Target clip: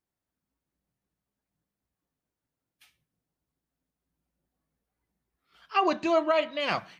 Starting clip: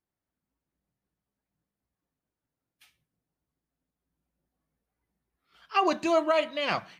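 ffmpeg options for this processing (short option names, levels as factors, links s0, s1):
-filter_complex "[0:a]asettb=1/sr,asplit=3[s0][s1][s2];[s0]atrim=end=5.744[s3];[s1]atrim=start=5.74:end=6.6,asetpts=PTS-STARTPTS,afade=t=in:d=0.004:c=qsin,afade=t=out:st=0.856:d=0.004:c=qsin,lowpass=5100[s4];[s2]atrim=start=6.596[s5];[s3][s4]acrossfade=d=0.004:c1=hsin:c2=qsin[s6];[s6][s5]acrossfade=d=0.004:c1=qsin:c2=hsin"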